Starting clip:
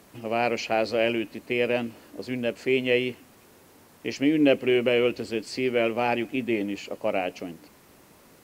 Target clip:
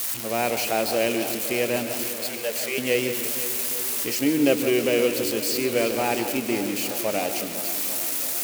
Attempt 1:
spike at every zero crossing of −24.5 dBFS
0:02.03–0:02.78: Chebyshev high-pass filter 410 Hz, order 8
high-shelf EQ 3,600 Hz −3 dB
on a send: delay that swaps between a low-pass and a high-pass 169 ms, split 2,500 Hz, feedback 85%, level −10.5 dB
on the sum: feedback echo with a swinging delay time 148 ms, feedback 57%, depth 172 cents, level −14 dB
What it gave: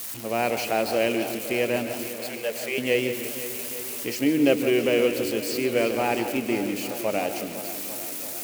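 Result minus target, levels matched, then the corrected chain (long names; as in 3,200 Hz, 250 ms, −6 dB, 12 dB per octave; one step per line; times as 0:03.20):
spike at every zero crossing: distortion −7 dB
spike at every zero crossing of −17.5 dBFS
0:02.03–0:02.78: Chebyshev high-pass filter 410 Hz, order 8
high-shelf EQ 3,600 Hz −3 dB
on a send: delay that swaps between a low-pass and a high-pass 169 ms, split 2,500 Hz, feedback 85%, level −10.5 dB
on the sum: feedback echo with a swinging delay time 148 ms, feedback 57%, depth 172 cents, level −14 dB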